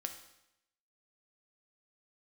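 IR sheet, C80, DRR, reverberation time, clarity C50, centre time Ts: 11.5 dB, 5.0 dB, 0.85 s, 9.0 dB, 16 ms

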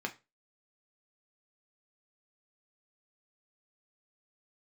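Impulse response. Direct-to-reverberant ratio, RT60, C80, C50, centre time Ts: 2.5 dB, 0.25 s, 23.5 dB, 17.5 dB, 8 ms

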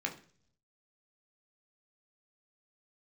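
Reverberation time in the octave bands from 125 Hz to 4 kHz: 1.0, 0.70, 0.55, 0.40, 0.45, 0.60 s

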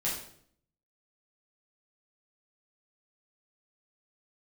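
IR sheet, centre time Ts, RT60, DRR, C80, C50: 41 ms, 0.60 s, -7.0 dB, 8.0 dB, 4.0 dB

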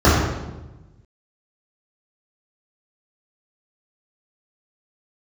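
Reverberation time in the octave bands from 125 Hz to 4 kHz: 1.6, 1.3, 1.2, 1.0, 0.85, 0.80 s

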